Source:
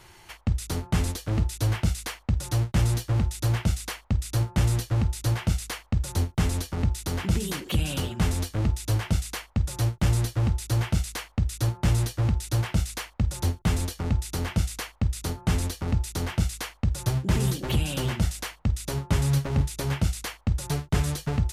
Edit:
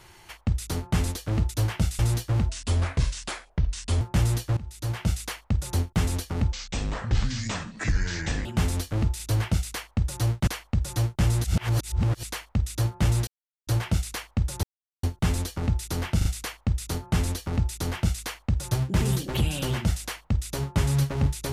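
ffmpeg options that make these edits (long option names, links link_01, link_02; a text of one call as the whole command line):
ffmpeg -i in.wav -filter_complex "[0:a]asplit=17[link_01][link_02][link_03][link_04][link_05][link_06][link_07][link_08][link_09][link_10][link_11][link_12][link_13][link_14][link_15][link_16][link_17];[link_01]atrim=end=1.512[link_18];[link_02]atrim=start=8.818:end=9.302[link_19];[link_03]atrim=start=2.788:end=3.294[link_20];[link_04]atrim=start=3.29:end=4.43,asetpts=PTS-STARTPTS,asetrate=33075,aresample=44100[link_21];[link_05]atrim=start=4.426:end=4.99,asetpts=PTS-STARTPTS,afade=type=out:start_time=0.56:duration=0.004:curve=hsin:silence=0.112202[link_22];[link_06]atrim=start=4.99:end=6.944,asetpts=PTS-STARTPTS,afade=type=in:duration=0.56:silence=0.112202[link_23];[link_07]atrim=start=6.94:end=8.08,asetpts=PTS-STARTPTS,asetrate=26019,aresample=44100,atrim=end_sample=85210,asetpts=PTS-STARTPTS[link_24];[link_08]atrim=start=8.076:end=8.822[link_25];[link_09]atrim=start=1.508:end=2.792[link_26];[link_10]atrim=start=9.298:end=10.272[link_27];[link_11]atrim=start=10.268:end=11.062,asetpts=PTS-STARTPTS,areverse[link_28];[link_12]atrim=start=11.058:end=12.1,asetpts=PTS-STARTPTS,afade=type=out:start_time=1.038:duration=0.004:curve=hsin[link_29];[link_13]atrim=start=12.1:end=12.5,asetpts=PTS-STARTPTS,volume=0[link_30];[link_14]atrim=start=12.5:end=13.46,asetpts=PTS-STARTPTS,afade=type=in:duration=0.004:curve=hsin,afade=type=out:start_time=0.956:duration=0.004:curve=hsin,apad=pad_dur=0.4[link_31];[link_15]atrim=start=13.46:end=14.642,asetpts=PTS-STARTPTS,afade=type=in:duration=0.004:curve=hsin[link_32];[link_16]atrim=start=14.598:end=14.642[link_33];[link_17]atrim=start=14.598[link_34];[link_18][link_19]acrossfade=duration=0.004:curve1=hsin:curve2=hsin[link_35];[link_35][link_20]acrossfade=duration=0.004:curve1=hsin:curve2=hsin[link_36];[link_36][link_21]acrossfade=duration=0.004:curve1=hsin:curve2=hsin[link_37];[link_22][link_23]concat=n=2:v=0:a=1[link_38];[link_37][link_38]acrossfade=duration=0.004:curve1=hsin:curve2=hsin[link_39];[link_39][link_24]acrossfade=duration=0.004:curve1=hsin:curve2=hsin[link_40];[link_40][link_25]acrossfade=duration=0.004:curve1=hsin:curve2=hsin[link_41];[link_41][link_26]acrossfade=duration=0.004:curve1=hsin:curve2=hsin[link_42];[link_42][link_27]acrossfade=duration=0.004:curve1=hsin:curve2=hsin[link_43];[link_43][link_28]acrossfade=duration=0.004:curve1=hsin:curve2=hsin[link_44];[link_29][link_30][link_31][link_32]concat=n=4:v=0:a=1[link_45];[link_44][link_45]acrossfade=duration=0.004:curve1=hsin:curve2=hsin[link_46];[link_46][link_33]acrossfade=duration=0.004:curve1=hsin:curve2=hsin[link_47];[link_47][link_34]acrossfade=duration=0.004:curve1=hsin:curve2=hsin" out.wav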